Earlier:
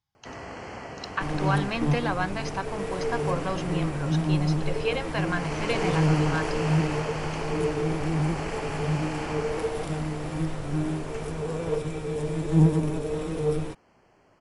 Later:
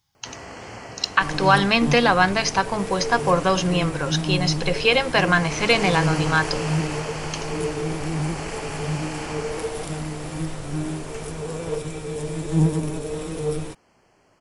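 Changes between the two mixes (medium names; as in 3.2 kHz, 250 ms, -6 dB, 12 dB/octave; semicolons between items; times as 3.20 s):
speech +10.5 dB; master: add treble shelf 4.3 kHz +10.5 dB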